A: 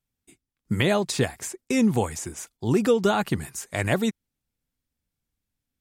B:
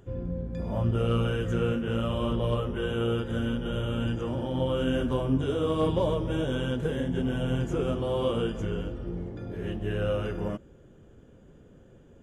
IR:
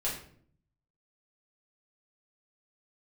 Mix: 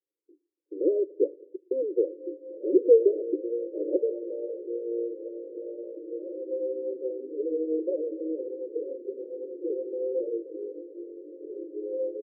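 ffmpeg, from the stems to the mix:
-filter_complex "[0:a]volume=2.5dB,asplit=2[link_01][link_02];[link_02]volume=-22dB[link_03];[1:a]adelay=1900,volume=-0.5dB[link_04];[2:a]atrim=start_sample=2205[link_05];[link_03][link_05]afir=irnorm=-1:irlink=0[link_06];[link_01][link_04][link_06]amix=inputs=3:normalize=0,asuperpass=centerf=410:order=20:qfactor=1.5"

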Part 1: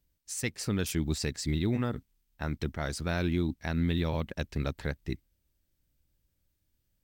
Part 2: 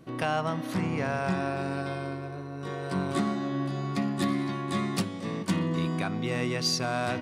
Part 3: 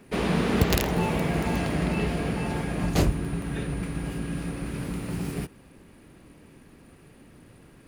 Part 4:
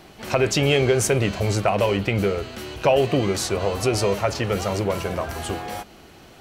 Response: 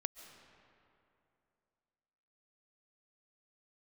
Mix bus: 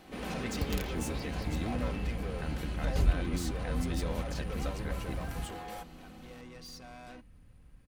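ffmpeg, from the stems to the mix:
-filter_complex "[0:a]lowpass=frequency=4000:width=0.5412,lowpass=frequency=4000:width=1.3066,alimiter=limit=-23.5dB:level=0:latency=1,volume=-5.5dB,asplit=2[link_01][link_02];[1:a]asoftclip=type=tanh:threshold=-29.5dB,volume=-15.5dB[link_03];[2:a]asubboost=boost=9:cutoff=100,volume=-14.5dB[link_04];[3:a]equalizer=frequency=5500:width_type=o:width=0.77:gain=-3,alimiter=limit=-16dB:level=0:latency=1:release=30,asoftclip=type=tanh:threshold=-29.5dB,volume=-9dB[link_05];[link_02]apad=whole_len=318157[link_06];[link_03][link_06]sidechaincompress=threshold=-49dB:ratio=8:attack=16:release=1180[link_07];[link_01][link_07][link_04][link_05]amix=inputs=4:normalize=0,aecho=1:1:3.9:0.39"

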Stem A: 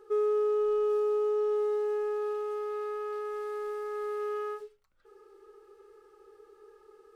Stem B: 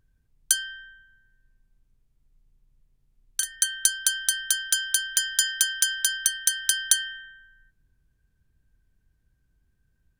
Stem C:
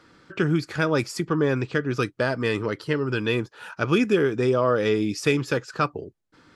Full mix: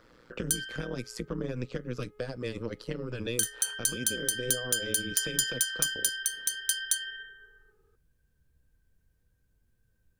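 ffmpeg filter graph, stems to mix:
ffmpeg -i stem1.wav -i stem2.wav -i stem3.wav -filter_complex "[0:a]asoftclip=type=tanh:threshold=-38dB,alimiter=level_in=21dB:limit=-24dB:level=0:latency=1,volume=-21dB,adelay=800,volume=-14.5dB[link_01];[1:a]highshelf=frequency=8900:gain=7,flanger=delay=8.4:depth=6.2:regen=63:speed=0.41:shape=triangular,volume=2.5dB[link_02];[2:a]tremolo=f=120:d=0.974,alimiter=limit=-17dB:level=0:latency=1:release=343,acrossover=split=290|3000[link_03][link_04][link_05];[link_04]acompressor=threshold=-40dB:ratio=6[link_06];[link_03][link_06][link_05]amix=inputs=3:normalize=0,volume=-1.5dB[link_07];[link_02][link_07]amix=inputs=2:normalize=0,equalizer=frequency=500:width_type=o:width=0.31:gain=9.5,alimiter=limit=-11dB:level=0:latency=1:release=276,volume=0dB[link_08];[link_01][link_08]amix=inputs=2:normalize=0" out.wav

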